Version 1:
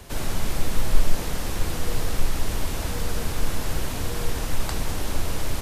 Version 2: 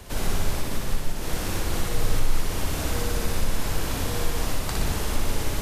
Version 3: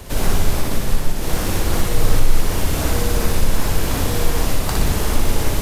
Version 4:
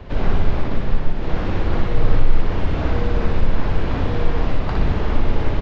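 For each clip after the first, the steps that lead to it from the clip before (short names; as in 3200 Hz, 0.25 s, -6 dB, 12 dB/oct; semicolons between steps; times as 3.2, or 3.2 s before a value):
compressor 4:1, threshold -18 dBFS, peak gain reduction 9.5 dB; on a send: flutter echo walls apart 10.4 m, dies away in 1 s
high shelf 12000 Hz +4.5 dB; in parallel at -8 dB: decimation with a swept rate 20×, swing 100% 2.7 Hz; on the sum: gain +5 dB
air absorption 370 m; downsampling 16000 Hz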